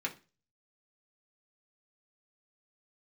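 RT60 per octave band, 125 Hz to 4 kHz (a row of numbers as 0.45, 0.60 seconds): 0.50, 0.35, 0.35, 0.30, 0.30, 0.30 seconds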